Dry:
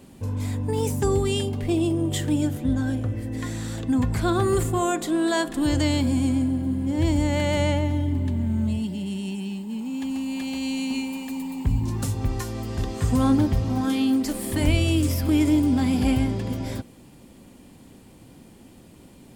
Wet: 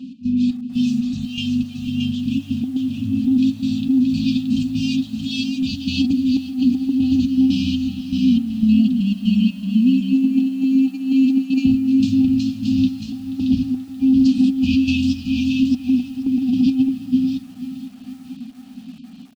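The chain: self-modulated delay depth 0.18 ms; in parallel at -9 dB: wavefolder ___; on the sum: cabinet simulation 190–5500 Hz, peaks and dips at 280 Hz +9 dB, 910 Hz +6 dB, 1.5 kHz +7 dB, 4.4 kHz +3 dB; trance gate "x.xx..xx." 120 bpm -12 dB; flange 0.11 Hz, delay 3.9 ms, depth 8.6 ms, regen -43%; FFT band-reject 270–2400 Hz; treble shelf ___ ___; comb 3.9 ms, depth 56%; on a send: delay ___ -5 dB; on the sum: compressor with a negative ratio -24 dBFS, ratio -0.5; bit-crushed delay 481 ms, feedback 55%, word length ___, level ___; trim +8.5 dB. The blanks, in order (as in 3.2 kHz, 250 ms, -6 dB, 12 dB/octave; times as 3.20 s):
-20 dBFS, 4 kHz, -10.5 dB, 625 ms, 8-bit, -15 dB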